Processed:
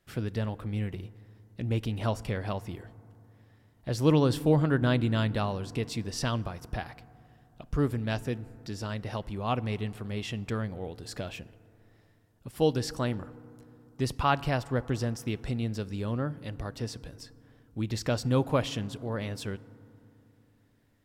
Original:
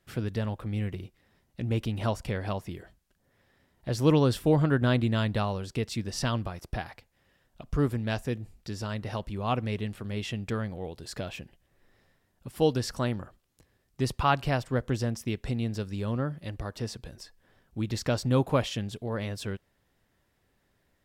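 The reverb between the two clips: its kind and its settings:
feedback delay network reverb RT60 3 s, low-frequency decay 1.3×, high-frequency decay 0.3×, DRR 18.5 dB
level −1 dB

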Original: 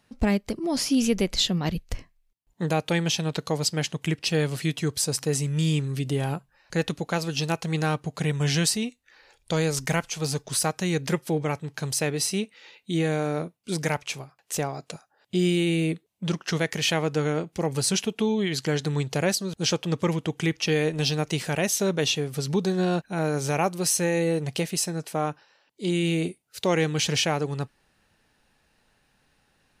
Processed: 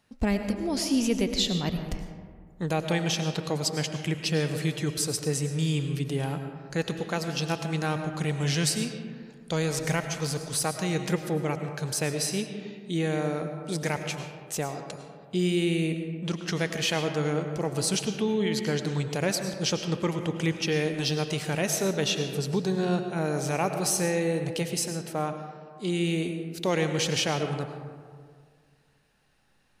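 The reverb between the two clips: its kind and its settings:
comb and all-pass reverb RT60 1.9 s, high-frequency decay 0.4×, pre-delay 65 ms, DRR 6.5 dB
level −3 dB

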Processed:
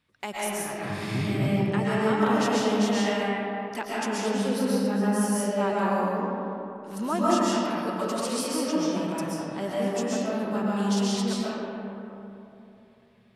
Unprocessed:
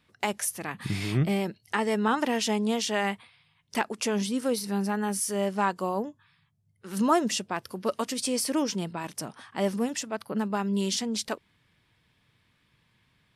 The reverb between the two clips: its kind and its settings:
comb and all-pass reverb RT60 3.1 s, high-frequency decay 0.4×, pre-delay 90 ms, DRR −7.5 dB
level −6.5 dB

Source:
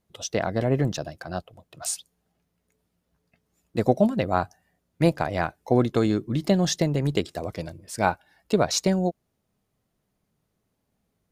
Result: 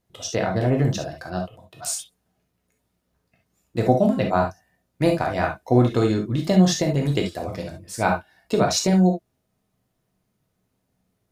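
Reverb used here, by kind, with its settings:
reverb whose tail is shaped and stops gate 90 ms flat, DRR 1 dB

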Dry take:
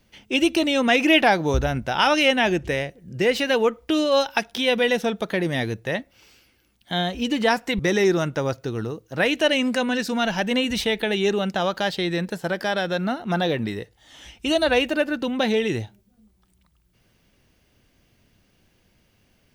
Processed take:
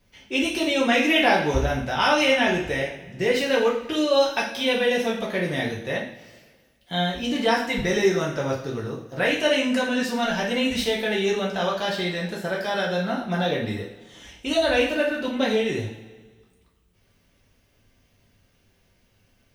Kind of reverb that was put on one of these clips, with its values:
coupled-rooms reverb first 0.47 s, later 1.6 s, from −16 dB, DRR −4.5 dB
level −6.5 dB

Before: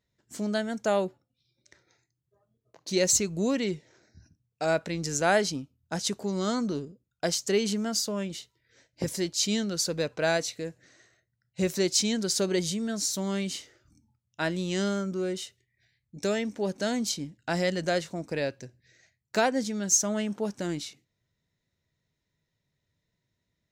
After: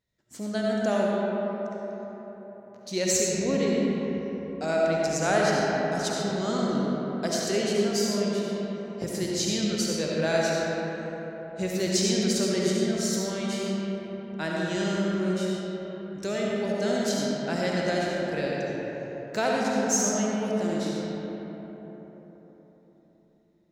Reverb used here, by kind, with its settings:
comb and all-pass reverb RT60 4.4 s, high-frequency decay 0.4×, pre-delay 30 ms, DRR −4.5 dB
level −3.5 dB

